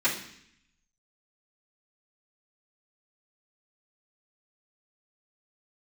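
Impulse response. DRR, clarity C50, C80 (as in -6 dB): -13.5 dB, 7.5 dB, 11.0 dB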